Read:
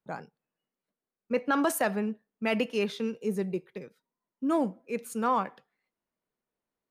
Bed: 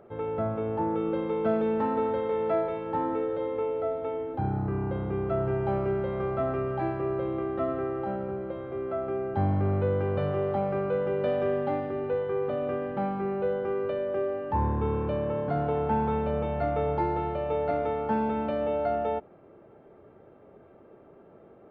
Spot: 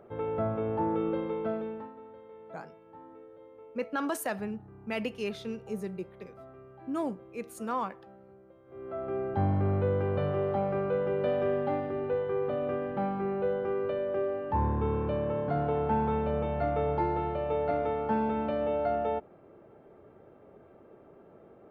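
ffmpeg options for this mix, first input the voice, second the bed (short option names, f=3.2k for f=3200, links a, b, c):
-filter_complex "[0:a]adelay=2450,volume=-5.5dB[a];[1:a]volume=19dB,afade=t=out:st=1.02:d=0.91:silence=0.0944061,afade=t=in:st=8.65:d=0.54:silence=0.1[b];[a][b]amix=inputs=2:normalize=0"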